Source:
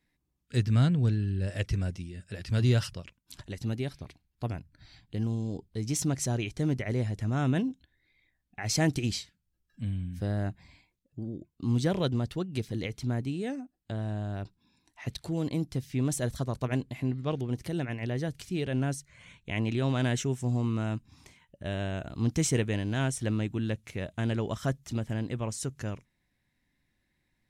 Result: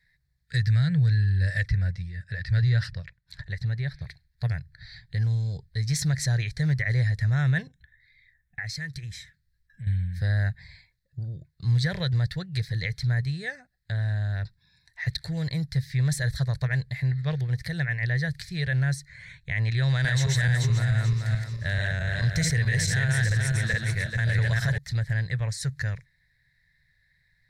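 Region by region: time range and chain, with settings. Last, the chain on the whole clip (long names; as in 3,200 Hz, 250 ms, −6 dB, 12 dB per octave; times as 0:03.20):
0:01.68–0:04.01: downward compressor 1.5 to 1, threshold −30 dBFS + low-pass filter 2,400 Hz 6 dB per octave
0:07.67–0:09.87: auto-filter notch square 1.5 Hz 730–4,500 Hz + downward compressor 3 to 1, threshold −42 dBFS
0:19.83–0:24.78: feedback delay that plays each chunk backwards 217 ms, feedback 56%, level −0.5 dB + high-shelf EQ 5,400 Hz +5.5 dB
whole clip: drawn EQ curve 150 Hz 0 dB, 270 Hz −30 dB, 490 Hz −11 dB, 1,200 Hz −13 dB, 1,800 Hz +10 dB, 2,900 Hz −15 dB, 4,100 Hz +5 dB, 6,200 Hz −8 dB; brickwall limiter −24 dBFS; level +8 dB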